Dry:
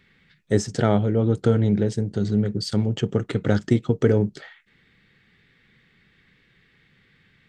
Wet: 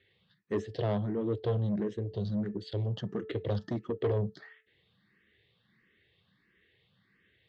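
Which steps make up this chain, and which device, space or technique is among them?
de-hum 436.7 Hz, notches 4; barber-pole phaser into a guitar amplifier (endless phaser +1.5 Hz; soft clip -19.5 dBFS, distortion -12 dB; speaker cabinet 87–4100 Hz, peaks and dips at 150 Hz -9 dB, 250 Hz -8 dB, 840 Hz -6 dB, 1400 Hz -8 dB, 2300 Hz -8 dB); gain -2.5 dB

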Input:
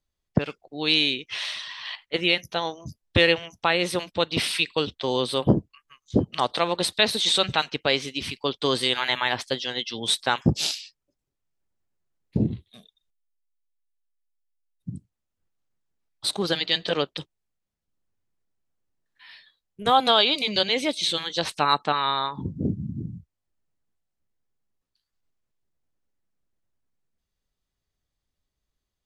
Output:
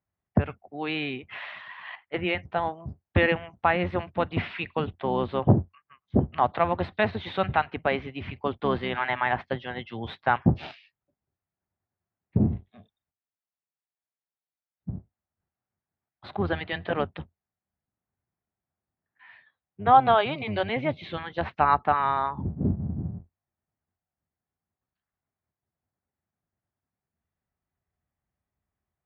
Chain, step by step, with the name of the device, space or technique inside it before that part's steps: sub-octave bass pedal (octaver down 1 oct, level -3 dB; speaker cabinet 80–2100 Hz, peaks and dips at 87 Hz +5 dB, 300 Hz -4 dB, 480 Hz -5 dB, 740 Hz +5 dB)

